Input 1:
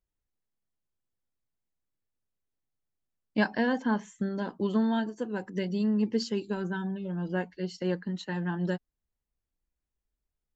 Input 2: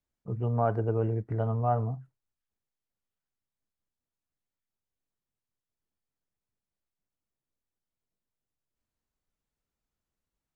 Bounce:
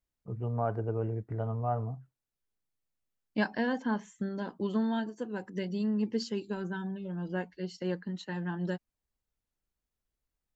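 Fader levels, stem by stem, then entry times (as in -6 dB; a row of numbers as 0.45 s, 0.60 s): -3.5 dB, -4.5 dB; 0.00 s, 0.00 s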